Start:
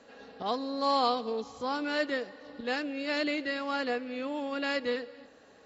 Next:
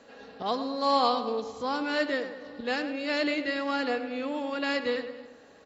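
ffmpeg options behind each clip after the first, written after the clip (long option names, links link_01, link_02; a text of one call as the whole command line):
ffmpeg -i in.wav -filter_complex "[0:a]asplit=2[link_01][link_02];[link_02]adelay=104,lowpass=frequency=2600:poles=1,volume=-9.5dB,asplit=2[link_03][link_04];[link_04]adelay=104,lowpass=frequency=2600:poles=1,volume=0.5,asplit=2[link_05][link_06];[link_06]adelay=104,lowpass=frequency=2600:poles=1,volume=0.5,asplit=2[link_07][link_08];[link_08]adelay=104,lowpass=frequency=2600:poles=1,volume=0.5,asplit=2[link_09][link_10];[link_10]adelay=104,lowpass=frequency=2600:poles=1,volume=0.5,asplit=2[link_11][link_12];[link_12]adelay=104,lowpass=frequency=2600:poles=1,volume=0.5[link_13];[link_01][link_03][link_05][link_07][link_09][link_11][link_13]amix=inputs=7:normalize=0,volume=2dB" out.wav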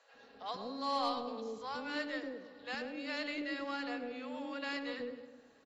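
ffmpeg -i in.wav -filter_complex "[0:a]asoftclip=type=tanh:threshold=-19.5dB,aeval=exprs='0.106*(cos(1*acos(clip(val(0)/0.106,-1,1)))-cos(1*PI/2))+0.015*(cos(3*acos(clip(val(0)/0.106,-1,1)))-cos(3*PI/2))+0.00188*(cos(4*acos(clip(val(0)/0.106,-1,1)))-cos(4*PI/2))+0.00211*(cos(5*acos(clip(val(0)/0.106,-1,1)))-cos(5*PI/2))+0.000944*(cos(6*acos(clip(val(0)/0.106,-1,1)))-cos(6*PI/2))':channel_layout=same,acrossover=split=560[link_01][link_02];[link_01]adelay=140[link_03];[link_03][link_02]amix=inputs=2:normalize=0,volume=-5.5dB" out.wav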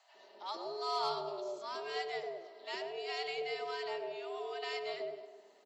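ffmpeg -i in.wav -af "equalizer=frequency=1400:width_type=o:width=0.88:gain=-7.5,afreqshift=150,volume=1.5dB" out.wav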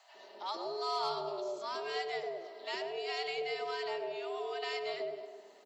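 ffmpeg -i in.wav -af "acompressor=threshold=-44dB:ratio=1.5,volume=5dB" out.wav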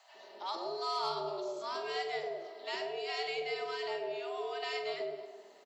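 ffmpeg -i in.wav -filter_complex "[0:a]asplit=2[link_01][link_02];[link_02]adelay=46,volume=-9dB[link_03];[link_01][link_03]amix=inputs=2:normalize=0" out.wav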